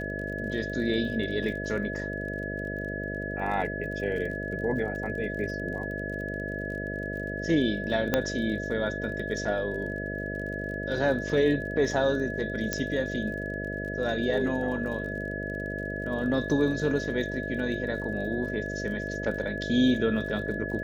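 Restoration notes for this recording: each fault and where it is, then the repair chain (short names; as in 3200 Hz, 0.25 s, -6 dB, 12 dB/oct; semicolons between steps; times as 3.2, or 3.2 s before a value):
buzz 50 Hz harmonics 13 -35 dBFS
crackle 34/s -38 dBFS
tone 1700 Hz -35 dBFS
8.14 pop -9 dBFS
12.73 pop -12 dBFS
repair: de-click; notch 1700 Hz, Q 30; de-hum 50 Hz, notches 13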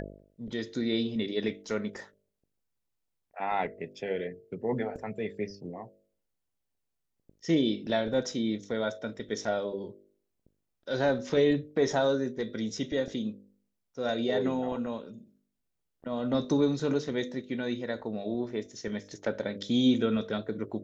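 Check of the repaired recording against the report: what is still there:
8.14 pop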